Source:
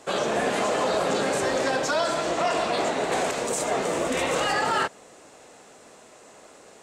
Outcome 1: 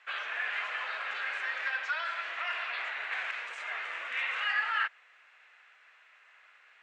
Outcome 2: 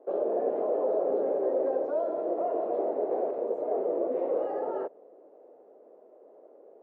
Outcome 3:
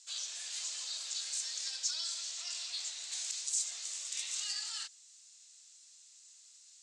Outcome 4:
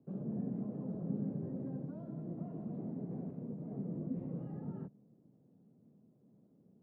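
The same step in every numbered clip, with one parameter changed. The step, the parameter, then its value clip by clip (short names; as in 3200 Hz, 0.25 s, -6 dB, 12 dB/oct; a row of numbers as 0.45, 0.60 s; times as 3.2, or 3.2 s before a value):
Butterworth band-pass, frequency: 2000, 460, 5800, 160 Hz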